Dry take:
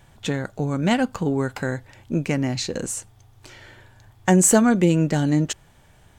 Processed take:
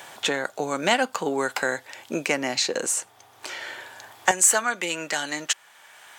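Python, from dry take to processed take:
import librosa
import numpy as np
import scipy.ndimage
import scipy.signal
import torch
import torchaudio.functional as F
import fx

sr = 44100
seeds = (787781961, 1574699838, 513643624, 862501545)

y = fx.highpass(x, sr, hz=fx.steps((0.0, 550.0), (4.31, 1200.0)), slope=12)
y = fx.band_squash(y, sr, depth_pct=40)
y = F.gain(torch.from_numpy(y), 5.5).numpy()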